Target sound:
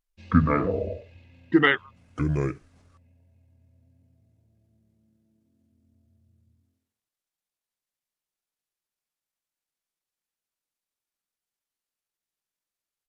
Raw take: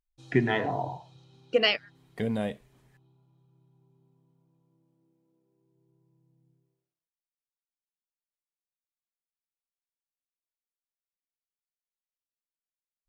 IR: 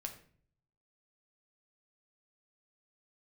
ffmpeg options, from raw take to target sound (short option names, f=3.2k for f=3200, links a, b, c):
-af "asetrate=29433,aresample=44100,atempo=1.49831,volume=4.5dB"